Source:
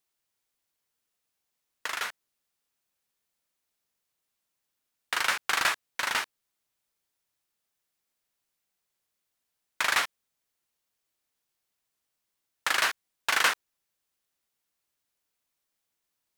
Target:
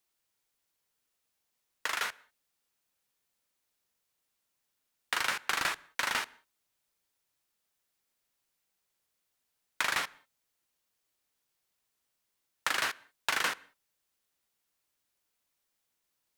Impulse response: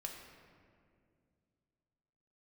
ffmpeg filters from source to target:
-filter_complex "[0:a]acrossover=split=350[link_01][link_02];[link_02]acompressor=threshold=-28dB:ratio=5[link_03];[link_01][link_03]amix=inputs=2:normalize=0,asplit=2[link_04][link_05];[1:a]atrim=start_sample=2205,afade=type=out:start_time=0.21:duration=0.01,atrim=end_sample=9702,asetrate=35280,aresample=44100[link_06];[link_05][link_06]afir=irnorm=-1:irlink=0,volume=-15dB[link_07];[link_04][link_07]amix=inputs=2:normalize=0"

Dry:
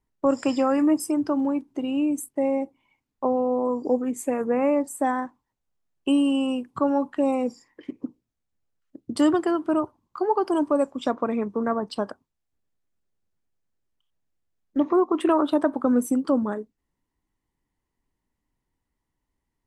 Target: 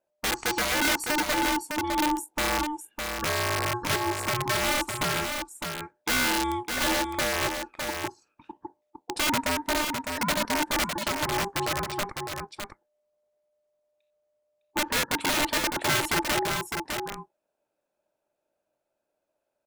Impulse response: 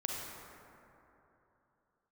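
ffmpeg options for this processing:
-af "aeval=exprs='val(0)*sin(2*PI*600*n/s)':channel_layout=same,aeval=exprs='(mod(8.91*val(0)+1,2)-1)/8.91':channel_layout=same,aecho=1:1:607:0.531"

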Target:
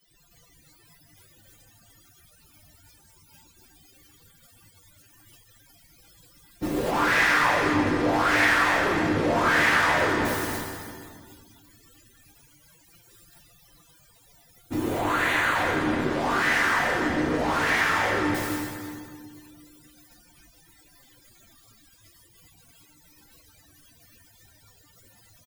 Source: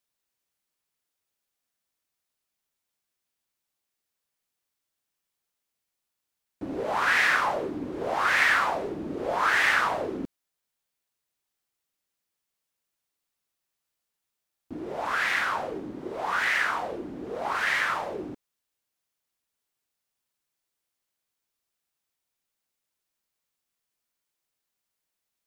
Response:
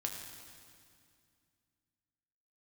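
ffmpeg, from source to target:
-filter_complex "[0:a]aeval=exprs='val(0)+0.5*0.0501*sgn(val(0))':channel_layout=same,asettb=1/sr,asplit=3[link_01][link_02][link_03];[link_01]atrim=end=14.764[link_04];[link_02]atrim=start=14.76:end=15.55,asetpts=PTS-STARTPTS,afade=type=in:duration=0.004:curve=qsin,afade=type=out:start_time=0.786:duration=0.004:curve=qsin,equalizer=frequency=5200:width=5.8:gain=-12.5[link_05];[link_03]atrim=start=15.546[link_06];[link_04][link_05]acrossfade=duration=0.004:curve1=hsin:curve2=qsin[link_07];[link_07][link_06]acrossfade=duration=0.004:curve1=qsin:curve2=hsin,aecho=1:1:293|586|879|1172|1465:0.422|0.169|0.0675|0.027|0.0108,flanger=delay=5.6:depth=8:regen=-47:speed=0.15:shape=sinusoidal,agate=range=-13dB:threshold=-34dB:ratio=16:detection=peak,lowshelf=frequency=190:gain=6.5[link_08];[1:a]atrim=start_sample=2205[link_09];[link_08][link_09]afir=irnorm=-1:irlink=0,afftdn=noise_reduction=25:noise_floor=-49,volume=2.5dB"

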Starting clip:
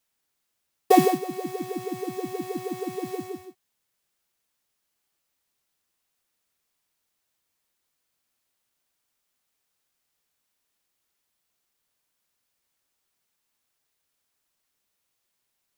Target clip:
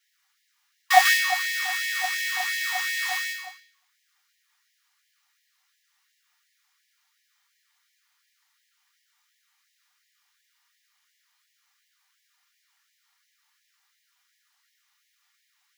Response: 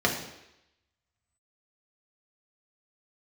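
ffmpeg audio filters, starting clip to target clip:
-filter_complex "[0:a]asettb=1/sr,asplit=3[link_01][link_02][link_03];[link_01]atrim=end=1.054[link_04];[link_02]atrim=start=1.05:end=3.33,asetpts=PTS-STARTPTS,afade=type=in:duration=0.004:curve=qsin,afade=type=out:start_time=2.276:duration=0.004:curve=qsin,acontrast=89[link_05];[link_03]atrim=start=3.326[link_06];[link_04][link_05]acrossfade=duration=0.004:curve1=hsin:curve2=qsin[link_07];[link_07][link_06]acrossfade=duration=0.004:curve1=qsin:curve2=hsin[link_08];[1:a]atrim=start_sample=2205,afade=type=out:start_time=0.43:duration=0.01,atrim=end_sample=19404[link_09];[link_08][link_09]afir=irnorm=-1:irlink=0,afftfilt=real='re*gte(b*sr/1024,730*pow(1700/730,0.5+0.5*sin(2*PI*2.8*pts/sr)))':imag='im*gte(b*sr/1024,730*pow(1700/730,0.5+0.5*sin(2*PI*2.8*pts/sr)))':win_size=1024:overlap=0.75"

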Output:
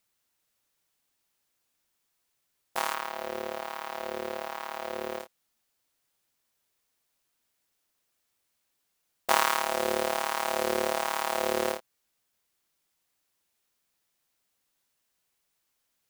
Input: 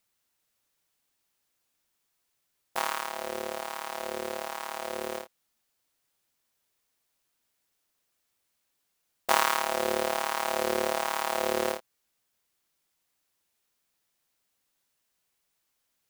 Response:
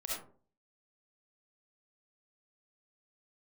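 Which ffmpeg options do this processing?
-filter_complex "[0:a]asettb=1/sr,asplit=3[link_01][link_02][link_03];[link_01]atrim=end=2.944[link_04];[link_02]atrim=start=2.94:end=5.2,asetpts=PTS-STARTPTS,afade=type=in:duration=0.004:curve=qsin,afade=type=out:start_time=2.256:duration=0.004:curve=qsin,equalizer=frequency=8900:width_type=o:width=1.5:gain=-8.5[link_05];[link_03]atrim=start=5.196[link_06];[link_04][link_05]acrossfade=duration=0.004:curve1=hsin:curve2=qsin[link_07];[link_07][link_06]acrossfade=duration=0.004:curve1=qsin:curve2=hsin"

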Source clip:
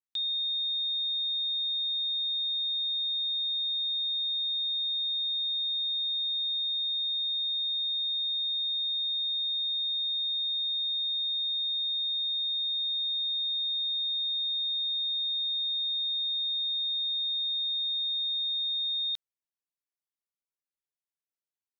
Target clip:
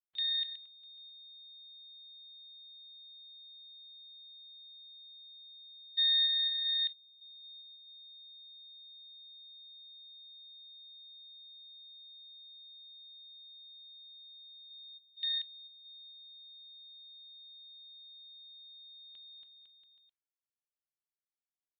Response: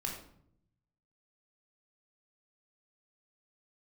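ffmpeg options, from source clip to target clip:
-filter_complex "[0:a]asplit=3[link_01][link_02][link_03];[link_01]afade=type=out:start_time=5.97:duration=0.02[link_04];[link_02]acontrast=66,afade=type=in:start_time=5.97:duration=0.02,afade=type=out:start_time=6.92:duration=0.02[link_05];[link_03]afade=type=in:start_time=6.92:duration=0.02[link_06];[link_04][link_05][link_06]amix=inputs=3:normalize=0,asplit=3[link_07][link_08][link_09];[link_07]afade=type=out:start_time=14.69:duration=0.02[link_10];[link_08]aemphasis=mode=reproduction:type=bsi,afade=type=in:start_time=14.69:duration=0.02,afade=type=out:start_time=15.16:duration=0.02[link_11];[link_09]afade=type=in:start_time=15.16:duration=0.02[link_12];[link_10][link_11][link_12]amix=inputs=3:normalize=0,aecho=1:1:280|504|683.2|826.6|941.2:0.631|0.398|0.251|0.158|0.1,afwtdn=0.0316,aresample=8000,aresample=44100,volume=2.5dB" -ar 12000 -c:a libmp3lame -b:a 24k

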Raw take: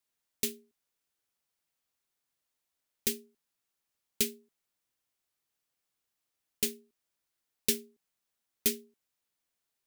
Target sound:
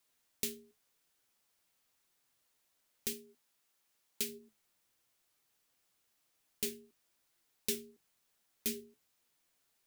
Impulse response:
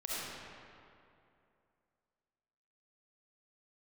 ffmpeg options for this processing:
-filter_complex "[0:a]bandreject=frequency=50:width_type=h:width=6,bandreject=frequency=100:width_type=h:width=6,bandreject=frequency=150:width_type=h:width=6,asettb=1/sr,asplit=3[link_01][link_02][link_03];[link_01]atrim=end=3.134[link_04];[link_02]atrim=start=3.13:end=4.29,asetpts=PTS-STARTPTS,afade=type=in:duration=0.004:curve=qsin,afade=type=out:start_time=1.156:duration=0.004:curve=qsin,lowshelf=frequency=150:gain=-9[link_05];[link_03]atrim=start=4.286[link_06];[link_04][link_05]acrossfade=duration=0.004:curve1=hsin:curve2=qsin[link_07];[link_07][link_06]acrossfade=duration=0.004:curve1=qsin:curve2=hsin,asplit=2[link_08][link_09];[link_09]acompressor=threshold=-36dB:ratio=6,volume=0dB[link_10];[link_08][link_10]amix=inputs=2:normalize=0,alimiter=limit=-20.5dB:level=0:latency=1:release=228,flanger=delay=5.6:depth=6.3:regen=66:speed=0.95:shape=triangular,volume=5.5dB"

